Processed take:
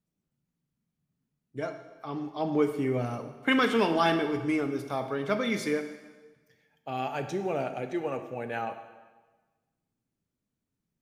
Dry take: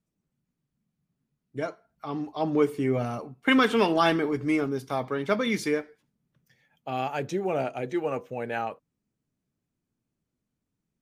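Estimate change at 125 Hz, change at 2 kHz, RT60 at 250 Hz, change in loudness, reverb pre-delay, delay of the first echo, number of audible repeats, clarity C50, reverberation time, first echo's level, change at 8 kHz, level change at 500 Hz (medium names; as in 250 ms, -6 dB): -2.0 dB, -2.0 dB, 1.3 s, -2.5 dB, 20 ms, no echo, no echo, 9.5 dB, 1.3 s, no echo, -2.5 dB, -2.5 dB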